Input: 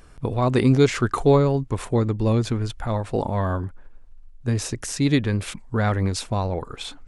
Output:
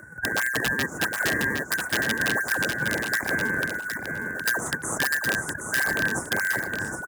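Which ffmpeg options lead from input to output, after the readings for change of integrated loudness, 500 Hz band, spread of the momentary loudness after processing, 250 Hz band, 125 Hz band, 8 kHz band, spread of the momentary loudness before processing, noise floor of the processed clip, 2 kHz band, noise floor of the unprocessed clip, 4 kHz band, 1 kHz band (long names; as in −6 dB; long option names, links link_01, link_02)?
−2.5 dB, −10.5 dB, 5 LU, −10.5 dB, −16.0 dB, +4.0 dB, 11 LU, −38 dBFS, +13.5 dB, −45 dBFS, +2.0 dB, −4.5 dB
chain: -filter_complex "[0:a]afftfilt=real='real(if(lt(b,272),68*(eq(floor(b/68),0)*3+eq(floor(b/68),1)*0+eq(floor(b/68),2)*1+eq(floor(b/68),3)*2)+mod(b,68),b),0)':imag='imag(if(lt(b,272),68*(eq(floor(b/68),0)*3+eq(floor(b/68),1)*0+eq(floor(b/68),2)*1+eq(floor(b/68),3)*2)+mod(b,68),b),0)':win_size=2048:overlap=0.75,asplit=2[link_01][link_02];[link_02]acrusher=samples=37:mix=1:aa=0.000001:lfo=1:lforange=59.2:lforate=1.5,volume=-4dB[link_03];[link_01][link_03]amix=inputs=2:normalize=0,acompressor=threshold=-21dB:ratio=10,asuperstop=centerf=3500:order=8:qfactor=0.7,acrossover=split=200[link_04][link_05];[link_04]acompressor=threshold=-38dB:ratio=4[link_06];[link_06][link_05]amix=inputs=2:normalize=0,aeval=exprs='(mod(7.94*val(0)+1,2)-1)/7.94':channel_layout=same,highpass=81,aecho=1:1:764|1528|2292:0.501|0.0852|0.0145,volume=2dB"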